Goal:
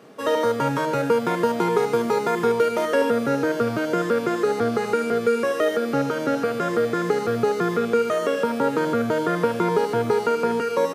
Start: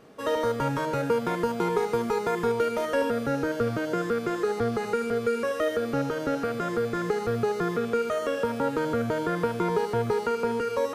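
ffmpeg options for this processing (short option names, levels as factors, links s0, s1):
-filter_complex "[0:a]acrossover=split=110|2100[s0][s1][s2];[s0]acrusher=bits=2:mix=0:aa=0.5[s3];[s3][s1][s2]amix=inputs=3:normalize=0,aecho=1:1:1166:0.2,volume=1.78"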